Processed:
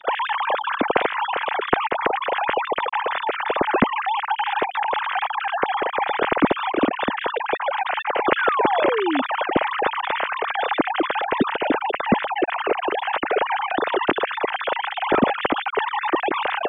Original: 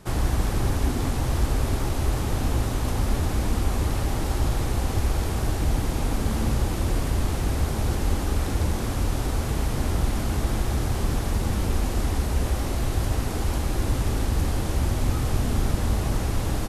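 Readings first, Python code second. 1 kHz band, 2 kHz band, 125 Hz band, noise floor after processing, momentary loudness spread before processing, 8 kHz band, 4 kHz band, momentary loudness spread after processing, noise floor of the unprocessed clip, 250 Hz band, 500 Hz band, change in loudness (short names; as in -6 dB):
+14.0 dB, +13.5 dB, -17.0 dB, -34 dBFS, 2 LU, under -40 dB, +6.5 dB, 4 LU, -28 dBFS, +3.0 dB, +9.5 dB, +4.0 dB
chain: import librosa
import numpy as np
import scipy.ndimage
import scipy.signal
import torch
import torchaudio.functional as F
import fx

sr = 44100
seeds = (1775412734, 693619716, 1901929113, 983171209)

y = fx.sine_speech(x, sr)
y = fx.rider(y, sr, range_db=10, speed_s=2.0)
y = fx.spec_paint(y, sr, seeds[0], shape='fall', start_s=8.37, length_s=0.85, low_hz=250.0, high_hz=1700.0, level_db=-22.0)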